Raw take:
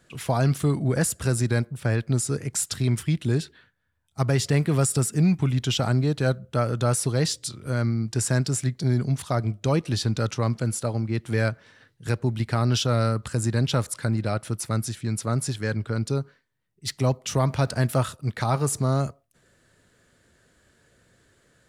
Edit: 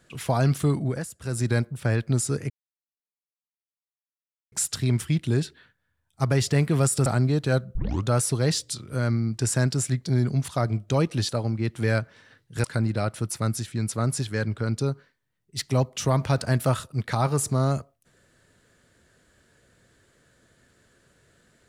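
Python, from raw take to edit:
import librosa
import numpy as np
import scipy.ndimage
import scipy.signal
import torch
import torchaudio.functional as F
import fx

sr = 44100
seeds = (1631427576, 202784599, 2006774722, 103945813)

y = fx.edit(x, sr, fx.fade_down_up(start_s=0.77, length_s=0.72, db=-13.5, fade_s=0.29),
    fx.insert_silence(at_s=2.5, length_s=2.02),
    fx.cut(start_s=5.04, length_s=0.76),
    fx.tape_start(start_s=6.49, length_s=0.31),
    fx.cut(start_s=10.03, length_s=0.76),
    fx.cut(start_s=12.14, length_s=1.79), tone=tone)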